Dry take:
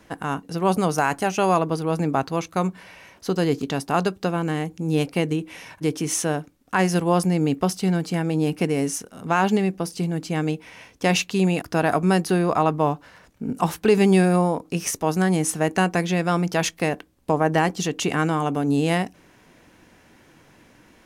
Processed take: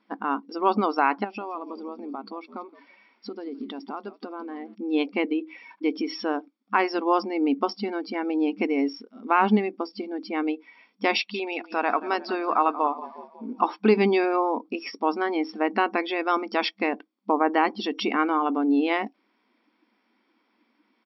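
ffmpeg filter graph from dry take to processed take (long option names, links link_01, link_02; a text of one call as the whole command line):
ffmpeg -i in.wav -filter_complex "[0:a]asettb=1/sr,asplit=3[link_01][link_02][link_03];[link_01]atrim=end=1.244[link_04];[link_02]atrim=start=1.24:end=4.75,asetpts=PTS-STARTPTS,afade=type=in:duration=0.004:curve=qsin,afade=type=out:start_time=3.506:duration=0.004:curve=qsin,acompressor=threshold=-29dB:ratio=6:attack=3.2:release=140:knee=1:detection=peak,asplit=6[link_05][link_06][link_07][link_08][link_09][link_10];[link_06]adelay=168,afreqshift=-86,volume=-12dB[link_11];[link_07]adelay=336,afreqshift=-172,volume=-18dB[link_12];[link_08]adelay=504,afreqshift=-258,volume=-24dB[link_13];[link_09]adelay=672,afreqshift=-344,volume=-30.1dB[link_14];[link_10]adelay=840,afreqshift=-430,volume=-36.1dB[link_15];[link_05][link_11][link_12][link_13][link_14][link_15]amix=inputs=6:normalize=0,atrim=end_sample=154791[link_16];[link_03]atrim=start=4.746[link_17];[link_04][link_16]acrossfade=duration=0.004:curve1=hsin:curve2=qsin[link_18];[link_18][link_17]acrossfade=duration=0.004:curve1=qsin:curve2=hsin,asettb=1/sr,asplit=3[link_19][link_20][link_21];[link_19]atrim=end=11.164[link_22];[link_20]atrim=start=11.16:end=13.59,asetpts=PTS-STARTPTS,afade=type=in:duration=0.004:curve=qsin,afade=type=out:start_time=2.426:duration=0.004:curve=qsin,equalizer=frequency=250:width=0.8:gain=-7.5,asplit=7[link_23][link_24][link_25][link_26][link_27][link_28][link_29];[link_24]adelay=180,afreqshift=-30,volume=-14dB[link_30];[link_25]adelay=360,afreqshift=-60,volume=-18.4dB[link_31];[link_26]adelay=540,afreqshift=-90,volume=-22.9dB[link_32];[link_27]adelay=720,afreqshift=-120,volume=-27.3dB[link_33];[link_28]adelay=900,afreqshift=-150,volume=-31.7dB[link_34];[link_29]adelay=1080,afreqshift=-180,volume=-36.2dB[link_35];[link_23][link_30][link_31][link_32][link_33][link_34][link_35]amix=inputs=7:normalize=0,atrim=end_sample=107163[link_36];[link_21]atrim=start=13.586[link_37];[link_22][link_36]acrossfade=duration=0.004:curve1=hsin:curve2=qsin[link_38];[link_38][link_37]acrossfade=duration=0.004:curve1=qsin:curve2=hsin,afftfilt=real='re*between(b*sr/4096,200,5600)':imag='im*between(b*sr/4096,200,5600)':win_size=4096:overlap=0.75,afftdn=noise_reduction=15:noise_floor=-35,aecho=1:1:0.9:0.43" out.wav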